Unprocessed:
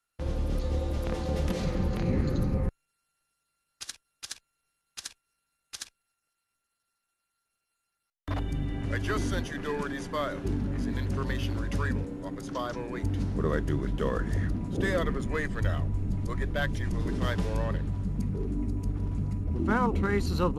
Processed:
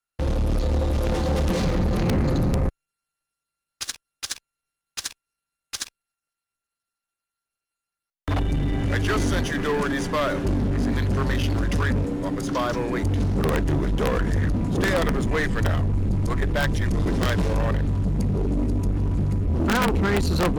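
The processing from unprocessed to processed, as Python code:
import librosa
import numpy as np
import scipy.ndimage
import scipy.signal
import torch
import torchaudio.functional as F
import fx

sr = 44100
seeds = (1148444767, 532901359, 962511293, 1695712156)

y = (np.mod(10.0 ** (16.5 / 20.0) * x + 1.0, 2.0) - 1.0) / 10.0 ** (16.5 / 20.0)
y = fx.leveller(y, sr, passes=3)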